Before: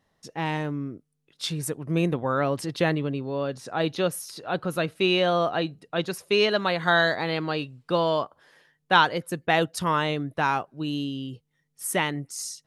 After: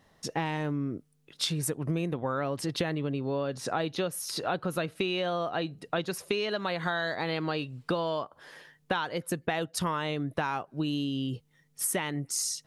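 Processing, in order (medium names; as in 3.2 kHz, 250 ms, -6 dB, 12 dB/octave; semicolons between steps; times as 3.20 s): in parallel at +3 dB: peak limiter -14 dBFS, peak gain reduction 9 dB; on the sum: compression 12:1, threshold -27 dBFS, peak gain reduction 18.5 dB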